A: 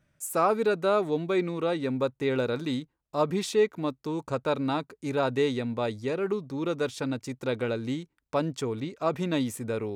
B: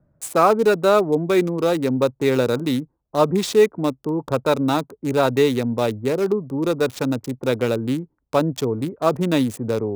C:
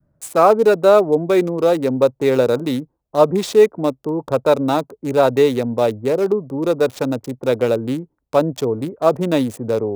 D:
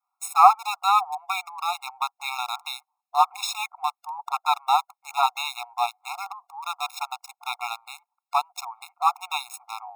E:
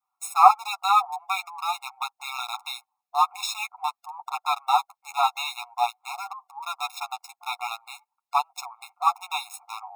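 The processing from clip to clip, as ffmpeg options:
-filter_complex "[0:a]lowpass=8900,acrossover=split=120|1100[s0][s1][s2];[s2]aeval=exprs='val(0)*gte(abs(val(0)),0.0133)':c=same[s3];[s0][s1][s3]amix=inputs=3:normalize=0,volume=2.66"
-af "adynamicequalizer=threshold=0.0316:dfrequency=590:dqfactor=1.1:tfrequency=590:tqfactor=1.1:attack=5:release=100:ratio=0.375:range=3.5:mode=boostabove:tftype=bell,volume=0.891"
-af "afftfilt=real='re*eq(mod(floor(b*sr/1024/710),2),1)':imag='im*eq(mod(floor(b*sr/1024/710),2),1)':win_size=1024:overlap=0.75,volume=1.33"
-af "flanger=delay=7.5:depth=3.9:regen=7:speed=0.47:shape=triangular,volume=1.33"

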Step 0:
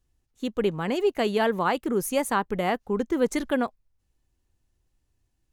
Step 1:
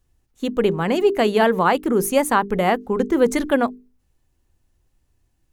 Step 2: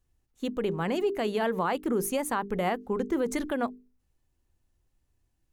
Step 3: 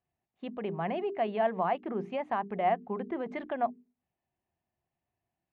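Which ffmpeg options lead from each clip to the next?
-af "equalizer=f=4700:w=0.6:g=-3,bandreject=f=50:t=h:w=6,bandreject=f=100:t=h:w=6,bandreject=f=150:t=h:w=6,bandreject=f=200:t=h:w=6,bandreject=f=250:t=h:w=6,bandreject=f=300:t=h:w=6,bandreject=f=350:t=h:w=6,bandreject=f=400:t=h:w=6,bandreject=f=450:t=h:w=6,volume=2.37"
-af "alimiter=limit=0.282:level=0:latency=1:release=78,volume=0.422"
-af "highpass=160,equalizer=f=180:t=q:w=4:g=3,equalizer=f=290:t=q:w=4:g=-8,equalizer=f=480:t=q:w=4:g=-7,equalizer=f=690:t=q:w=4:g=10,equalizer=f=1400:t=q:w=4:g=-6,lowpass=f=2700:w=0.5412,lowpass=f=2700:w=1.3066,bandreject=f=60:t=h:w=6,bandreject=f=120:t=h:w=6,bandreject=f=180:t=h:w=6,bandreject=f=240:t=h:w=6,volume=0.708"

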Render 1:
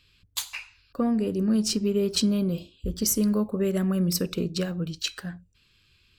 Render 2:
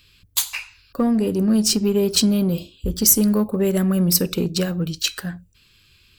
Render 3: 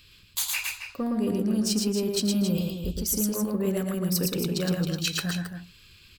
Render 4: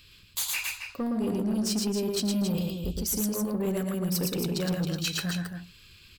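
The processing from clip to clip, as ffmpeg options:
-filter_complex "[0:a]asplit=2[s0][s1];[s1]volume=18.8,asoftclip=hard,volume=0.0531,volume=0.335[s2];[s0][s2]amix=inputs=2:normalize=0,highshelf=f=9800:g=12,volume=1.58"
-af "areverse,acompressor=threshold=0.0501:ratio=6,areverse,aecho=1:1:113.7|271.1:0.708|0.398"
-af "asoftclip=type=tanh:threshold=0.0794"

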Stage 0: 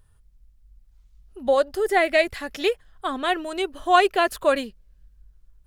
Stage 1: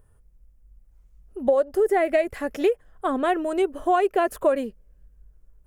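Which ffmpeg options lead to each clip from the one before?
-af "equalizer=f=250:t=o:w=1:g=4,equalizer=f=500:t=o:w=1:g=8,equalizer=f=4000:t=o:w=1:g=-12,acompressor=threshold=0.141:ratio=6"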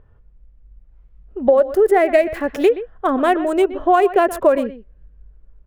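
-filter_complex "[0:a]acrossover=split=3600[s0][s1];[s0]aecho=1:1:124:0.188[s2];[s1]aeval=exprs='val(0)*gte(abs(val(0)),0.00531)':c=same[s3];[s2][s3]amix=inputs=2:normalize=0,volume=2.11"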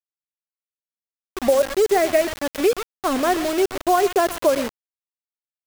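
-af "acrusher=bits=3:mix=0:aa=0.000001,volume=0.631"

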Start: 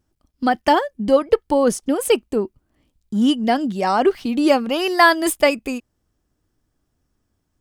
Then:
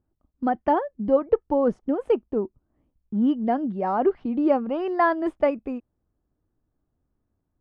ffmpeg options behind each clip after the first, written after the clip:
-af "lowpass=1100,volume=0.596"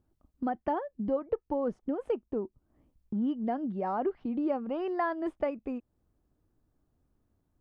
-af "acompressor=threshold=0.0112:ratio=2,volume=1.26"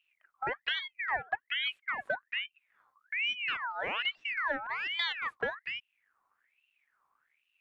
-af "aeval=exprs='val(0)*sin(2*PI*1900*n/s+1900*0.45/1.2*sin(2*PI*1.2*n/s))':c=same"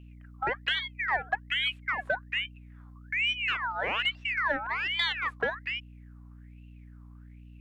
-af "aeval=exprs='0.133*(cos(1*acos(clip(val(0)/0.133,-1,1)))-cos(1*PI/2))+0.00237*(cos(5*acos(clip(val(0)/0.133,-1,1)))-cos(5*PI/2))':c=same,aeval=exprs='val(0)+0.00282*(sin(2*PI*60*n/s)+sin(2*PI*2*60*n/s)/2+sin(2*PI*3*60*n/s)/3+sin(2*PI*4*60*n/s)/4+sin(2*PI*5*60*n/s)/5)':c=same,volume=1.5"

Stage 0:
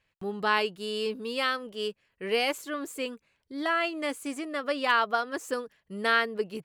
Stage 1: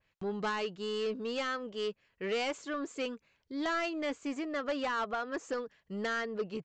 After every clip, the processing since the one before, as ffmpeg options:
-af "alimiter=limit=0.126:level=0:latency=1:release=157,aresample=16000,asoftclip=type=tanh:threshold=0.0422,aresample=44100,adynamicequalizer=threshold=0.00398:dfrequency=2300:dqfactor=0.7:tfrequency=2300:tqfactor=0.7:attack=5:release=100:ratio=0.375:range=3:mode=cutabove:tftype=highshelf"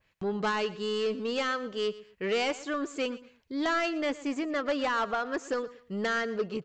-af "aecho=1:1:118|236:0.133|0.036,volume=1.68"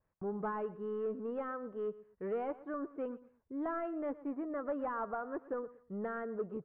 -af "lowpass=f=1300:w=0.5412,lowpass=f=1300:w=1.3066,volume=0.447"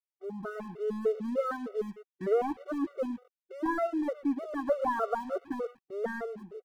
-af "aeval=exprs='sgn(val(0))*max(abs(val(0))-0.00112,0)':c=same,dynaudnorm=f=110:g=11:m=3.55,afftfilt=real='re*gt(sin(2*PI*3.3*pts/sr)*(1-2*mod(floor(b*sr/1024/380),2)),0)':imag='im*gt(sin(2*PI*3.3*pts/sr)*(1-2*mod(floor(b*sr/1024/380),2)),0)':win_size=1024:overlap=0.75"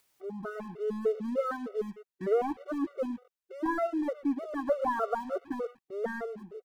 -af "acompressor=mode=upward:threshold=0.00282:ratio=2.5"

